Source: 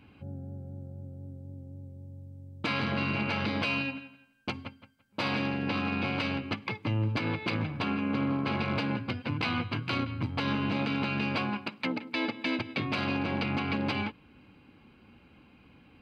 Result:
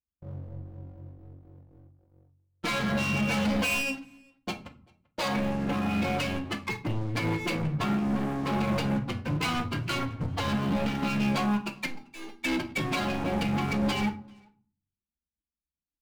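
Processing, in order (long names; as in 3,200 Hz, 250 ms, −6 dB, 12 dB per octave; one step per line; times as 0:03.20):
spectral dynamics exaggerated over time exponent 2
0:03.28–0:03.95: comb filter 4 ms, depth 77%
0:05.28–0:05.91: low-pass filter 2,200 Hz
leveller curve on the samples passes 5
0:11.86–0:12.42: tuned comb filter 400 Hz, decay 0.2 s, harmonics all, mix 90%
far-end echo of a speakerphone 390 ms, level −25 dB
convolution reverb RT60 0.45 s, pre-delay 6 ms, DRR 5.5 dB
level −6.5 dB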